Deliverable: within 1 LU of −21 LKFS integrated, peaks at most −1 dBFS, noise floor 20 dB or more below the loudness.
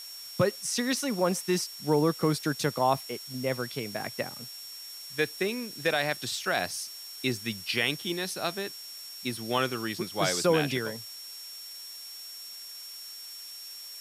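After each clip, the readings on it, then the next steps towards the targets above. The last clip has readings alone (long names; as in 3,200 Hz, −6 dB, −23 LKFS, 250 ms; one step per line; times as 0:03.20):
interfering tone 5,500 Hz; level of the tone −42 dBFS; background noise floor −43 dBFS; target noise floor −51 dBFS; integrated loudness −30.5 LKFS; sample peak −12.5 dBFS; target loudness −21.0 LKFS
→ notch filter 5,500 Hz, Q 30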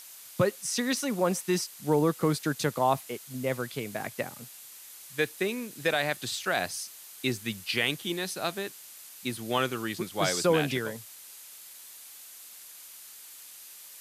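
interfering tone none found; background noise floor −48 dBFS; target noise floor −50 dBFS
→ noise reduction from a noise print 6 dB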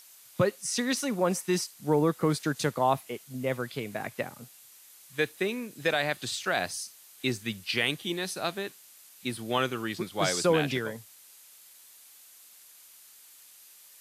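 background noise floor −54 dBFS; integrated loudness −30.0 LKFS; sample peak −12.5 dBFS; target loudness −21.0 LKFS
→ level +9 dB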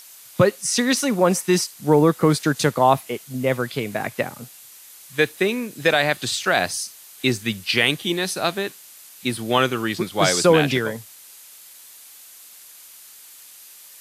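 integrated loudness −21.0 LKFS; sample peak −3.5 dBFS; background noise floor −45 dBFS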